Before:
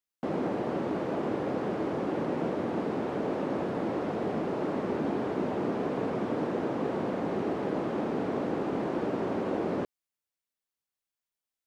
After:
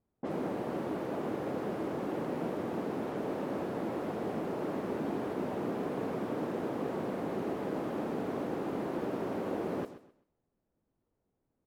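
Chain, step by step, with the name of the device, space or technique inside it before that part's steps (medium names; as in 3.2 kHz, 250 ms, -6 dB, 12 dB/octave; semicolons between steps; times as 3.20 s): cassette deck with a dynamic noise filter (white noise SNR 29 dB; level-controlled noise filter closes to 360 Hz, open at -28 dBFS); feedback delay 129 ms, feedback 27%, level -14 dB; trim -4.5 dB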